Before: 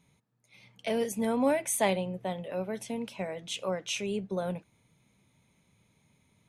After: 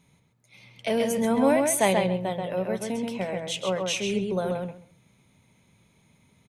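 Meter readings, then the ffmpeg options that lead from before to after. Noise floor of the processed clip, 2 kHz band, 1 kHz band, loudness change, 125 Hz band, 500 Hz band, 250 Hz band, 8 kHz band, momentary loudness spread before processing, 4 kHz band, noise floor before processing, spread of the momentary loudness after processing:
-64 dBFS, +6.0 dB, +6.0 dB, +6.0 dB, +6.0 dB, +6.0 dB, +6.0 dB, +5.0 dB, 10 LU, +5.5 dB, -70 dBFS, 9 LU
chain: -filter_complex "[0:a]asplit=2[s0][s1];[s1]adelay=133,lowpass=f=4200:p=1,volume=0.668,asplit=2[s2][s3];[s3]adelay=133,lowpass=f=4200:p=1,volume=0.17,asplit=2[s4][s5];[s5]adelay=133,lowpass=f=4200:p=1,volume=0.17[s6];[s0][s2][s4][s6]amix=inputs=4:normalize=0,volume=1.68"

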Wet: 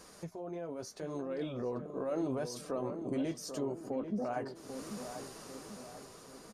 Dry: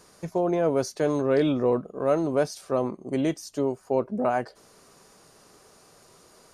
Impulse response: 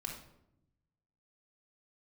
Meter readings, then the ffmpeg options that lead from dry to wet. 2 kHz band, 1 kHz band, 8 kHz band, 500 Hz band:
-12.5 dB, -12.5 dB, -5.5 dB, -13.0 dB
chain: -filter_complex "[0:a]acompressor=threshold=0.00355:ratio=2,alimiter=level_in=3.55:limit=0.0631:level=0:latency=1:release=15,volume=0.282,dynaudnorm=f=230:g=11:m=2.24,flanger=delay=3.7:depth=7.7:regen=-45:speed=0.76:shape=sinusoidal,asplit=2[s0][s1];[s1]adelay=791,lowpass=f=1400:p=1,volume=0.398,asplit=2[s2][s3];[s3]adelay=791,lowpass=f=1400:p=1,volume=0.5,asplit=2[s4][s5];[s5]adelay=791,lowpass=f=1400:p=1,volume=0.5,asplit=2[s6][s7];[s7]adelay=791,lowpass=f=1400:p=1,volume=0.5,asplit=2[s8][s9];[s9]adelay=791,lowpass=f=1400:p=1,volume=0.5,asplit=2[s10][s11];[s11]adelay=791,lowpass=f=1400:p=1,volume=0.5[s12];[s2][s4][s6][s8][s10][s12]amix=inputs=6:normalize=0[s13];[s0][s13]amix=inputs=2:normalize=0,volume=1.58"

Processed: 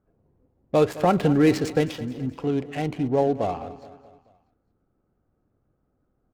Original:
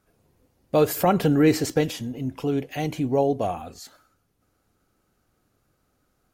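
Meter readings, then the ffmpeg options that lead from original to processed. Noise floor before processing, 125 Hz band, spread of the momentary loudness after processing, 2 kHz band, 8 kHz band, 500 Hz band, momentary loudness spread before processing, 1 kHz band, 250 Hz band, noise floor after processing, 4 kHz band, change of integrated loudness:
-71 dBFS, 0.0 dB, 11 LU, 0.0 dB, -7.5 dB, 0.0 dB, 11 LU, 0.0 dB, 0.0 dB, -73 dBFS, -2.5 dB, 0.0 dB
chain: -af "adynamicsmooth=sensitivity=7.5:basefreq=920,aecho=1:1:214|428|642|856:0.158|0.0777|0.0381|0.0186"

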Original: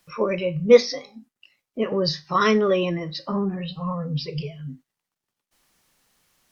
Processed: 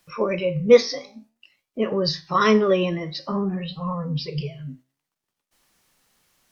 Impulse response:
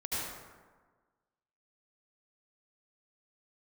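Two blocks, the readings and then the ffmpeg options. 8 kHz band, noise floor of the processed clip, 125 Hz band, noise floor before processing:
no reading, -84 dBFS, +0.5 dB, under -85 dBFS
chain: -af "flanger=delay=8.9:depth=7.6:regen=80:speed=0.53:shape=triangular,volume=1.78"

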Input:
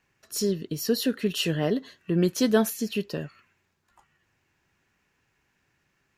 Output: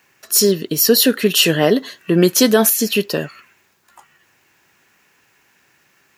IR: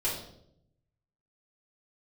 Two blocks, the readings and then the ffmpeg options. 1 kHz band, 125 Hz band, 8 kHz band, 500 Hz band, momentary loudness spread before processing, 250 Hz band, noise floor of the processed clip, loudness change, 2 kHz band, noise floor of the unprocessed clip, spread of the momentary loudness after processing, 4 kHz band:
+11.5 dB, +7.0 dB, +17.5 dB, +11.0 dB, 11 LU, +9.0 dB, -59 dBFS, +12.0 dB, +13.5 dB, -73 dBFS, 8 LU, +15.0 dB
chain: -af "highpass=f=360:p=1,highshelf=f=11000:g=11.5,alimiter=level_in=5.96:limit=0.891:release=50:level=0:latency=1,volume=0.891"

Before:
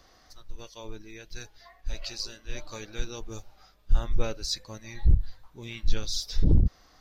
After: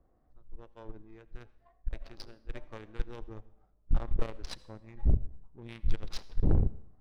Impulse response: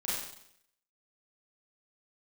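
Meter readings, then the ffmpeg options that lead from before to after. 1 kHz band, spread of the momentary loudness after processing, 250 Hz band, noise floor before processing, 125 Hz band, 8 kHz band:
-4.0 dB, 22 LU, -4.0 dB, -60 dBFS, -4.5 dB, no reading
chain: -filter_complex "[0:a]aeval=exprs='0.376*(cos(1*acos(clip(val(0)/0.376,-1,1)))-cos(1*PI/2))+0.0473*(cos(8*acos(clip(val(0)/0.376,-1,1)))-cos(8*PI/2))':c=same,adynamicsmooth=sensitivity=5.5:basefreq=520,aemphasis=mode=reproduction:type=50kf,asplit=2[s0][s1];[1:a]atrim=start_sample=2205,asetrate=48510,aresample=44100,adelay=38[s2];[s1][s2]afir=irnorm=-1:irlink=0,volume=0.075[s3];[s0][s3]amix=inputs=2:normalize=0,volume=0.531"

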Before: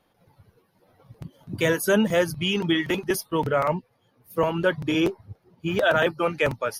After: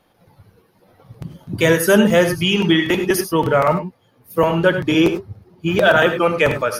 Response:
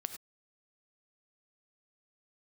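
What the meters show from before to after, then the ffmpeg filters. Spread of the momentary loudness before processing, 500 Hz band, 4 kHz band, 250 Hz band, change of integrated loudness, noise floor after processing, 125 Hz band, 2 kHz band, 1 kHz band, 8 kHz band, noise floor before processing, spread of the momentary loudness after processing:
12 LU, +7.5 dB, +7.5 dB, +8.0 dB, +7.5 dB, -58 dBFS, +8.0 dB, +7.5 dB, +7.5 dB, +7.5 dB, -67 dBFS, 13 LU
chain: -filter_complex "[1:a]atrim=start_sample=2205[s0];[0:a][s0]afir=irnorm=-1:irlink=0,volume=2.66"

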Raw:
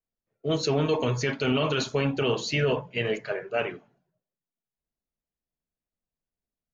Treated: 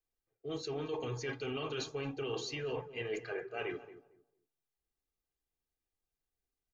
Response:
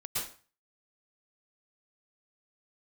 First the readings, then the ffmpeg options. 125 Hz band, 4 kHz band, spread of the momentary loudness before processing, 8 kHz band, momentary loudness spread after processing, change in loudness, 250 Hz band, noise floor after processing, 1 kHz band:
-15.0 dB, -12.0 dB, 6 LU, no reading, 6 LU, -12.5 dB, -13.5 dB, under -85 dBFS, -12.0 dB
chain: -filter_complex "[0:a]aecho=1:1:2.5:0.63,areverse,acompressor=threshold=0.02:ratio=6,areverse,asplit=2[s0][s1];[s1]adelay=226,lowpass=f=1000:p=1,volume=0.224,asplit=2[s2][s3];[s3]adelay=226,lowpass=f=1000:p=1,volume=0.22,asplit=2[s4][s5];[s5]adelay=226,lowpass=f=1000:p=1,volume=0.22[s6];[s0][s2][s4][s6]amix=inputs=4:normalize=0,volume=0.75"

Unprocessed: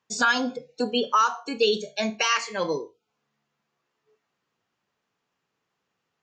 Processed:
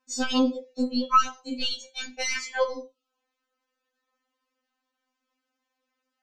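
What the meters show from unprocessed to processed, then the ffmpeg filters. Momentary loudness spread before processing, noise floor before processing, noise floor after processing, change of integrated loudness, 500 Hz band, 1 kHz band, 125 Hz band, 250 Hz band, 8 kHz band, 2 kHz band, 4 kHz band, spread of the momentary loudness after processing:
9 LU, -80 dBFS, -83 dBFS, -2.0 dB, -5.0 dB, -2.0 dB, under -10 dB, +3.0 dB, -1.5 dB, -6.5 dB, -2.5 dB, 10 LU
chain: -af "aeval=exprs='0.316*(cos(1*acos(clip(val(0)/0.316,-1,1)))-cos(1*PI/2))+0.0447*(cos(2*acos(clip(val(0)/0.316,-1,1)))-cos(2*PI/2))':c=same,afftfilt=real='re*3.46*eq(mod(b,12),0)':imag='im*3.46*eq(mod(b,12),0)':win_size=2048:overlap=0.75"

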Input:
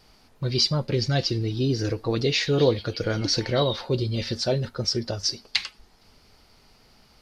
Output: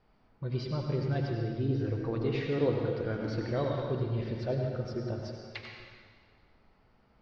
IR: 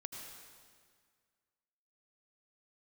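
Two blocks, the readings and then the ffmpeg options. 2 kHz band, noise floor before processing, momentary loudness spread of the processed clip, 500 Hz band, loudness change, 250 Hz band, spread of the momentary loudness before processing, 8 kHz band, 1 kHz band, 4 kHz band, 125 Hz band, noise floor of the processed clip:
-10.5 dB, -58 dBFS, 13 LU, -7.0 dB, -8.0 dB, -6.0 dB, 6 LU, under -25 dB, -7.0 dB, -22.0 dB, -5.5 dB, -66 dBFS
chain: -filter_complex "[0:a]lowpass=1800[s0];[1:a]atrim=start_sample=2205[s1];[s0][s1]afir=irnorm=-1:irlink=0,volume=0.631"

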